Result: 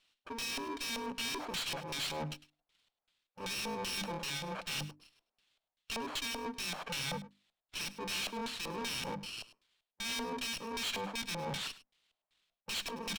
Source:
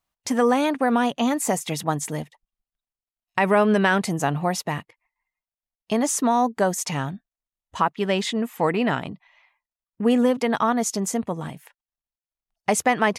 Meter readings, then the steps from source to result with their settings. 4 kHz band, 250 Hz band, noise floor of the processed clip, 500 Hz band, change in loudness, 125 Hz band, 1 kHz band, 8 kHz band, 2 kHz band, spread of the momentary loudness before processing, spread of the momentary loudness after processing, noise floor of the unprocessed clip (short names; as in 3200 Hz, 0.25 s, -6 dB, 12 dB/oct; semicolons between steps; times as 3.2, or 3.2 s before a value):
-2.0 dB, -21.5 dB, under -85 dBFS, -20.5 dB, -15.0 dB, -16.5 dB, -18.5 dB, -12.5 dB, -12.5 dB, 11 LU, 8 LU, under -85 dBFS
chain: FFT order left unsorted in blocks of 64 samples; passive tone stack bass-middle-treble 5-5-5; notches 50/100/150/200/250/300 Hz; AGC gain up to 10 dB; limiter -10 dBFS, peak gain reduction 7 dB; reverse; compressor 6:1, threshold -33 dBFS, peak gain reduction 16.5 dB; reverse; LFO low-pass square 2.6 Hz 670–3600 Hz; overdrive pedal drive 31 dB, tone 6900 Hz, clips at -24.5 dBFS; on a send: echo 0.103 s -17 dB; on the sum: running maximum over 3 samples; gain -4 dB